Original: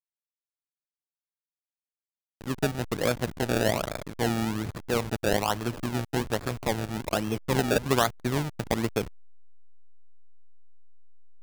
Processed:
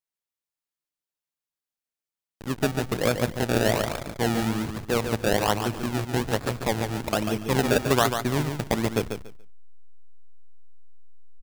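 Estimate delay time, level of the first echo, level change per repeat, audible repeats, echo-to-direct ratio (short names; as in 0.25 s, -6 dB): 0.143 s, -7.0 dB, -14.0 dB, 3, -7.0 dB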